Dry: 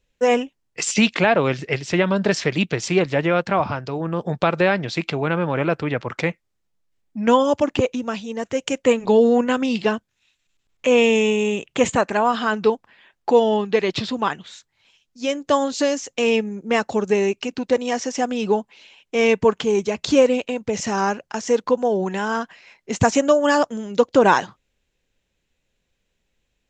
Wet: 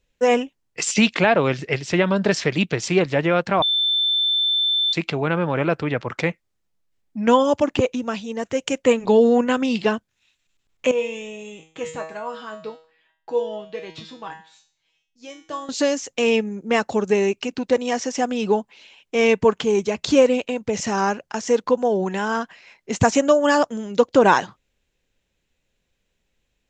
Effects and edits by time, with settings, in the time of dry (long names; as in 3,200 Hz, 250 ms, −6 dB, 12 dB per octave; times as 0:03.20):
0:03.62–0:04.93: beep over 3,540 Hz −17 dBFS
0:10.91–0:15.69: tuned comb filter 160 Hz, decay 0.45 s, mix 90%